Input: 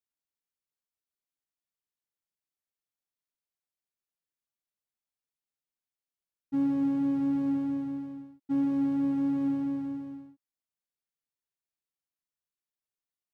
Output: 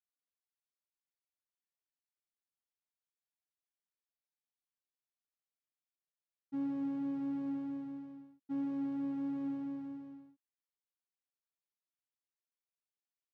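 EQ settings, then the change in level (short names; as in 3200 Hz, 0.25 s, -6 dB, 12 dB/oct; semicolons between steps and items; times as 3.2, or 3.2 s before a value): air absorption 62 m; low shelf 120 Hz -11 dB; -7.5 dB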